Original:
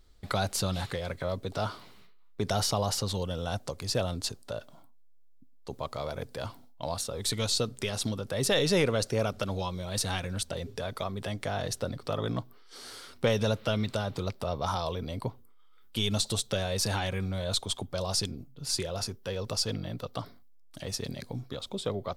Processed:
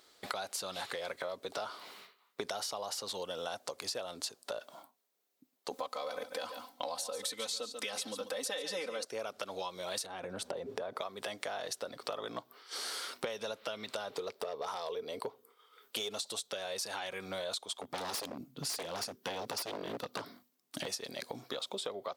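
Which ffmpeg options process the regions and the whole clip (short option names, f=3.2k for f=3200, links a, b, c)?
-filter_complex "[0:a]asettb=1/sr,asplit=3[a][b][c];[a]atrim=end=5.714[d];[b]atrim=start=5.71:end=9.05,asetpts=PTS-STARTPTS,afade=t=in:d=0.004:c=qsin,afade=t=out:st=3.336:d=0.004:c=qsin,aecho=1:1:3.9:0.98,atrim=end_sample=147294,aecho=1:1:141:0.251,atrim=end_sample=147294[e];[c]atrim=start=9.046[f];[d][e]acrossfade=d=0.004:c1=hsin:c2=qsin[g];[g][f]acrossfade=d=0.004:c1=qsin:c2=hsin,asettb=1/sr,asplit=3[h][i][j];[h]atrim=end=10.064[k];[i]atrim=start=10.06:end=11.01,asetpts=PTS-STARTPTS,afade=t=in:d=0.004:c=qsin,afade=t=out:st=0.946:d=0.004:c=qsin,tiltshelf=f=1.5k:g=9.5,acompressor=threshold=-33dB:ratio=3:attack=3.2:release=140:knee=1:detection=peak[l];[j]atrim=start=11.006[m];[k][l]acrossfade=d=0.004:c1=hsin:c2=qsin[n];[n][m]acrossfade=d=0.004:c1=qsin:c2=hsin,asettb=1/sr,asplit=3[o][p][q];[o]atrim=end=14.094[r];[p]atrim=start=14.09:end=16.18,asetpts=PTS-STARTPTS,afade=t=in:d=0.004:c=qsin,afade=t=out:st=2.086:d=0.004:c=qsin,volume=24dB,asoftclip=hard,volume=-24dB,equalizer=f=440:t=o:w=0.28:g=13[s];[q]atrim=start=16.176[t];[r][s]acrossfade=d=0.004:c1=hsin:c2=qsin[u];[u][t]acrossfade=d=0.004:c1=qsin:c2=hsin,asettb=1/sr,asplit=3[v][w][x];[v]atrim=end=17.804[y];[w]atrim=start=17.8:end=20.86,asetpts=PTS-STARTPTS,afade=t=in:d=0.004:c=qsin,afade=t=out:st=3.056:d=0.004:c=qsin,lowshelf=f=360:t=q:w=1.5:g=8.5,aeval=exprs='0.0562*(abs(mod(val(0)/0.0562+3,4)-2)-1)':c=same[z];[x]atrim=start=20.856[aa];[y][z]acrossfade=d=0.004:c1=hsin:c2=qsin[ab];[ab][aa]acrossfade=d=0.004:c1=qsin:c2=hsin,highpass=470,acompressor=threshold=-44dB:ratio=12,volume=8.5dB"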